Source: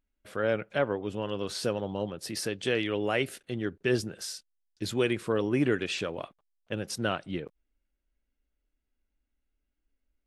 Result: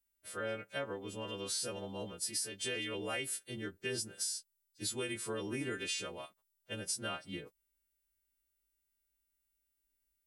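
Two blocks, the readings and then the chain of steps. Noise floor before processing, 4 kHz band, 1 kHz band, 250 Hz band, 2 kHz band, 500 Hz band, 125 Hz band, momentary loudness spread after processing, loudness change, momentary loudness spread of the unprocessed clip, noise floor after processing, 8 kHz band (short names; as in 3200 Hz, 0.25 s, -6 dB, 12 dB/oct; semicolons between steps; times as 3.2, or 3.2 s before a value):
-82 dBFS, -3.0 dB, -9.0 dB, -12.5 dB, -7.5 dB, -12.0 dB, -12.0 dB, 9 LU, -7.5 dB, 11 LU, -83 dBFS, +3.0 dB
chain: frequency quantiser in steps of 2 st; high shelf 6700 Hz +11.5 dB; compressor 6:1, threshold -25 dBFS, peak gain reduction 9 dB; gain -9 dB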